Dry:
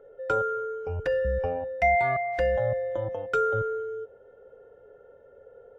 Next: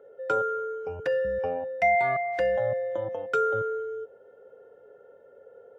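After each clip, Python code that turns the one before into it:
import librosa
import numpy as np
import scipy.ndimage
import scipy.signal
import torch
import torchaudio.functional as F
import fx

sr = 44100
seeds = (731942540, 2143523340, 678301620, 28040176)

y = scipy.signal.sosfilt(scipy.signal.butter(2, 160.0, 'highpass', fs=sr, output='sos'), x)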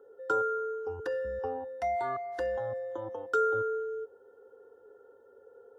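y = fx.fixed_phaser(x, sr, hz=610.0, stages=6)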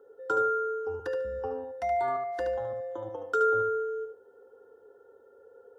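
y = fx.echo_feedback(x, sr, ms=73, feedback_pct=18, wet_db=-6.5)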